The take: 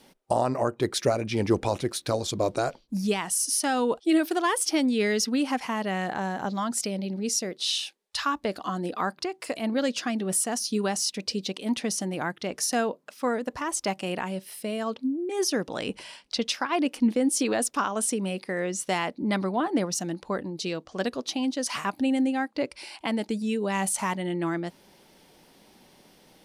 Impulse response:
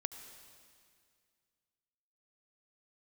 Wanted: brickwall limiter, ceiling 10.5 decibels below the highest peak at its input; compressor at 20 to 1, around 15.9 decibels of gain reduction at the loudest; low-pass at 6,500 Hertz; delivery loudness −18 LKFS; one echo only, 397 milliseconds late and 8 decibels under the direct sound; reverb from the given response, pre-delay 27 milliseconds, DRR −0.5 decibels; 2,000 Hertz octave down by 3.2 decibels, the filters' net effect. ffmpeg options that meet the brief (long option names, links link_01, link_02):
-filter_complex "[0:a]lowpass=6500,equalizer=frequency=2000:width_type=o:gain=-4,acompressor=threshold=-33dB:ratio=20,alimiter=level_in=6dB:limit=-24dB:level=0:latency=1,volume=-6dB,aecho=1:1:397:0.398,asplit=2[link_01][link_02];[1:a]atrim=start_sample=2205,adelay=27[link_03];[link_02][link_03]afir=irnorm=-1:irlink=0,volume=1.5dB[link_04];[link_01][link_04]amix=inputs=2:normalize=0,volume=17.5dB"